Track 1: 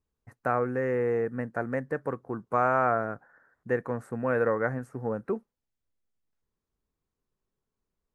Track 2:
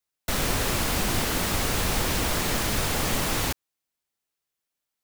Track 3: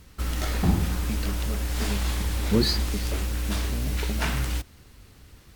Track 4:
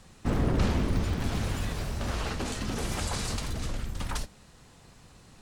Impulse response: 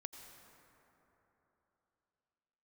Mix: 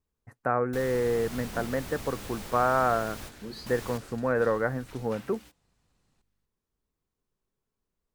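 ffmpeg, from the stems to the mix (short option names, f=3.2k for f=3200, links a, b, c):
-filter_complex "[0:a]acrossover=split=2600[a][b];[b]acompressor=threshold=-56dB:ratio=4:attack=1:release=60[c];[a][c]amix=inputs=2:normalize=0,volume=0.5dB,asplit=2[d][e];[1:a]adelay=450,volume=-16.5dB[f];[2:a]highpass=160,aeval=exprs='val(0)+0.00447*(sin(2*PI*50*n/s)+sin(2*PI*2*50*n/s)/2+sin(2*PI*3*50*n/s)/3+sin(2*PI*4*50*n/s)/4+sin(2*PI*5*50*n/s)/5)':c=same,agate=range=-15dB:threshold=-35dB:ratio=16:detection=peak,adelay=900,volume=-18.5dB[g];[3:a]adelay=800,volume=-19.5dB[h];[e]apad=whole_len=241958[i];[f][i]sidechaingate=range=-33dB:threshold=-49dB:ratio=16:detection=peak[j];[d][j][g][h]amix=inputs=4:normalize=0"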